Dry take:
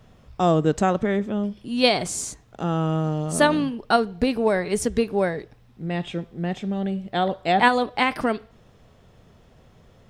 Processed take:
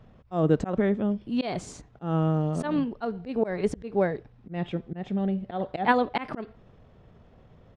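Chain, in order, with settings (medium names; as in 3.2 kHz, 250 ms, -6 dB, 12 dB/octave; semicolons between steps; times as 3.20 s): slow attack 208 ms; tape spacing loss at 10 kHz 22 dB; tempo 1.3×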